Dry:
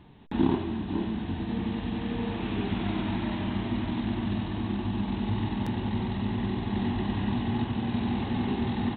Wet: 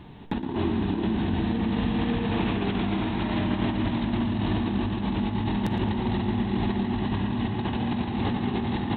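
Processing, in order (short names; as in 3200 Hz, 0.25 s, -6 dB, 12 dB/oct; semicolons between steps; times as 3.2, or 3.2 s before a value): negative-ratio compressor -32 dBFS, ratio -1; tape echo 0.114 s, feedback 84%, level -8 dB, low-pass 2800 Hz; on a send at -20 dB: reverb RT60 1.2 s, pre-delay 41 ms; on the sum: gain +5 dB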